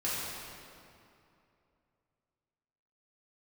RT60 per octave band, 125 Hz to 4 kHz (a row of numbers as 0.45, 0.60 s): 3.0, 2.9, 2.8, 2.6, 2.2, 1.8 s